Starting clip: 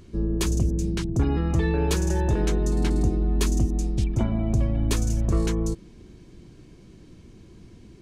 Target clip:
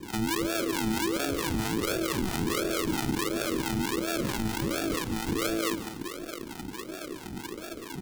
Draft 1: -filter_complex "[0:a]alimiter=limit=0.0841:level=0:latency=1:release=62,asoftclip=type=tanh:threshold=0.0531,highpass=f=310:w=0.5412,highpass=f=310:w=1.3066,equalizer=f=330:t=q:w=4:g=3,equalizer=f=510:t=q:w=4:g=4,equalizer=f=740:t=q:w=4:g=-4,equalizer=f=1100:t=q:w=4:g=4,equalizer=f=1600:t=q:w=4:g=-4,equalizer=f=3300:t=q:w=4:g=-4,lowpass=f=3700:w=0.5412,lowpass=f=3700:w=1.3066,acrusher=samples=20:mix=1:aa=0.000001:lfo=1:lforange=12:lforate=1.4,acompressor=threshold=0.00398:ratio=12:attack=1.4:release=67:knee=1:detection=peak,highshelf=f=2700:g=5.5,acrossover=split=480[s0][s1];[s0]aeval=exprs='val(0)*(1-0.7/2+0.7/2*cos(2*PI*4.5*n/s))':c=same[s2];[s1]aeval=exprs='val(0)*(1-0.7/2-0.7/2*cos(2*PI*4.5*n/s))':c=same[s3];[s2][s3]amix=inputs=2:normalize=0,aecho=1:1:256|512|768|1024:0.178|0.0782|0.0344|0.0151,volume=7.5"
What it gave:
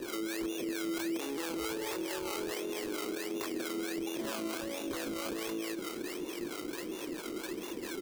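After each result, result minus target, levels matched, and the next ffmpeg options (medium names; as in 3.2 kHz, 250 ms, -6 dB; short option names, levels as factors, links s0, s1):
decimation with a swept rate: distortion -29 dB; echo 114 ms late; compression: peak gain reduction +7 dB
-filter_complex "[0:a]alimiter=limit=0.0841:level=0:latency=1:release=62,asoftclip=type=tanh:threshold=0.0531,highpass=f=310:w=0.5412,highpass=f=310:w=1.3066,equalizer=f=330:t=q:w=4:g=3,equalizer=f=510:t=q:w=4:g=4,equalizer=f=740:t=q:w=4:g=-4,equalizer=f=1100:t=q:w=4:g=4,equalizer=f=1600:t=q:w=4:g=-4,equalizer=f=3300:t=q:w=4:g=-4,lowpass=f=3700:w=0.5412,lowpass=f=3700:w=1.3066,acrusher=samples=62:mix=1:aa=0.000001:lfo=1:lforange=37.2:lforate=1.4,acompressor=threshold=0.00398:ratio=12:attack=1.4:release=67:knee=1:detection=peak,highshelf=f=2700:g=5.5,acrossover=split=480[s0][s1];[s0]aeval=exprs='val(0)*(1-0.7/2+0.7/2*cos(2*PI*4.5*n/s))':c=same[s2];[s1]aeval=exprs='val(0)*(1-0.7/2-0.7/2*cos(2*PI*4.5*n/s))':c=same[s3];[s2][s3]amix=inputs=2:normalize=0,aecho=1:1:256|512|768|1024:0.178|0.0782|0.0344|0.0151,volume=7.5"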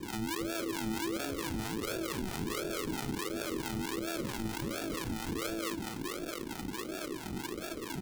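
echo 114 ms late; compression: peak gain reduction +7 dB
-filter_complex "[0:a]alimiter=limit=0.0841:level=0:latency=1:release=62,asoftclip=type=tanh:threshold=0.0531,highpass=f=310:w=0.5412,highpass=f=310:w=1.3066,equalizer=f=330:t=q:w=4:g=3,equalizer=f=510:t=q:w=4:g=4,equalizer=f=740:t=q:w=4:g=-4,equalizer=f=1100:t=q:w=4:g=4,equalizer=f=1600:t=q:w=4:g=-4,equalizer=f=3300:t=q:w=4:g=-4,lowpass=f=3700:w=0.5412,lowpass=f=3700:w=1.3066,acrusher=samples=62:mix=1:aa=0.000001:lfo=1:lforange=37.2:lforate=1.4,acompressor=threshold=0.00398:ratio=12:attack=1.4:release=67:knee=1:detection=peak,highshelf=f=2700:g=5.5,acrossover=split=480[s0][s1];[s0]aeval=exprs='val(0)*(1-0.7/2+0.7/2*cos(2*PI*4.5*n/s))':c=same[s2];[s1]aeval=exprs='val(0)*(1-0.7/2-0.7/2*cos(2*PI*4.5*n/s))':c=same[s3];[s2][s3]amix=inputs=2:normalize=0,aecho=1:1:142|284|426|568:0.178|0.0782|0.0344|0.0151,volume=7.5"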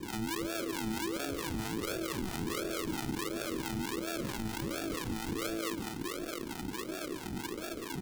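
compression: peak gain reduction +7 dB
-filter_complex "[0:a]alimiter=limit=0.0841:level=0:latency=1:release=62,asoftclip=type=tanh:threshold=0.0531,highpass=f=310:w=0.5412,highpass=f=310:w=1.3066,equalizer=f=330:t=q:w=4:g=3,equalizer=f=510:t=q:w=4:g=4,equalizer=f=740:t=q:w=4:g=-4,equalizer=f=1100:t=q:w=4:g=4,equalizer=f=1600:t=q:w=4:g=-4,equalizer=f=3300:t=q:w=4:g=-4,lowpass=f=3700:w=0.5412,lowpass=f=3700:w=1.3066,acrusher=samples=62:mix=1:aa=0.000001:lfo=1:lforange=37.2:lforate=1.4,acompressor=threshold=0.00944:ratio=12:attack=1.4:release=67:knee=1:detection=peak,highshelf=f=2700:g=5.5,acrossover=split=480[s0][s1];[s0]aeval=exprs='val(0)*(1-0.7/2+0.7/2*cos(2*PI*4.5*n/s))':c=same[s2];[s1]aeval=exprs='val(0)*(1-0.7/2-0.7/2*cos(2*PI*4.5*n/s))':c=same[s3];[s2][s3]amix=inputs=2:normalize=0,aecho=1:1:142|284|426|568:0.178|0.0782|0.0344|0.0151,volume=7.5"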